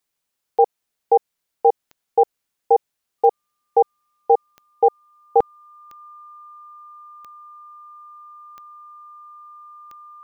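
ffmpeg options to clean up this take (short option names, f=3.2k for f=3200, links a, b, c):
-af "adeclick=t=4,bandreject=f=1.2k:w=30"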